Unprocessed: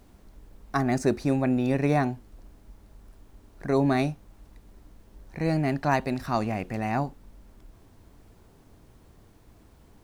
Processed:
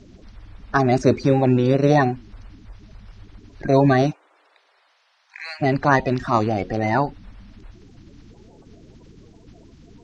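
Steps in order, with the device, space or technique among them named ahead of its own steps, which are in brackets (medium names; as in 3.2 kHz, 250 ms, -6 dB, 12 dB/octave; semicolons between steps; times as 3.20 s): 4.10–5.61 s: high-pass 420 Hz -> 1.4 kHz 24 dB/octave; clip after many re-uploads (low-pass 6.1 kHz 24 dB/octave; coarse spectral quantiser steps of 30 dB); trim +8 dB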